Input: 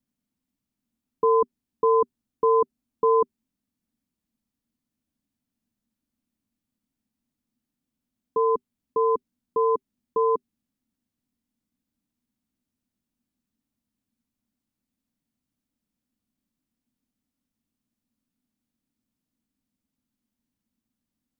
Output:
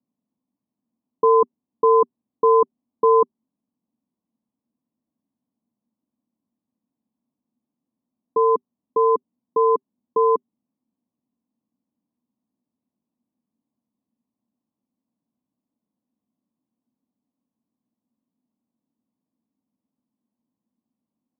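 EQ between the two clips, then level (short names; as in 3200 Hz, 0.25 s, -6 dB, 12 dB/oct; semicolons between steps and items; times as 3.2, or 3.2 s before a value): HPF 180 Hz 12 dB/oct; Chebyshev low-pass 1100 Hz, order 5; +5.0 dB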